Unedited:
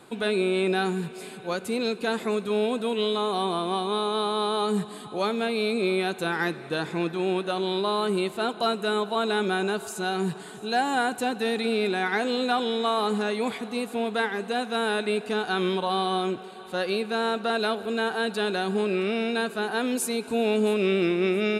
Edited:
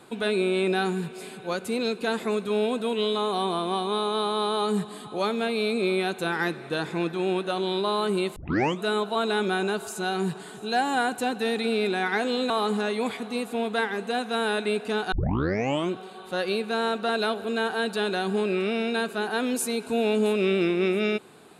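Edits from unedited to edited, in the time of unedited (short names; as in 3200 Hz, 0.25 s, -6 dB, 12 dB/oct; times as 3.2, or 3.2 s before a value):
8.36 tape start 0.46 s
12.5–12.91 cut
15.53 tape start 0.79 s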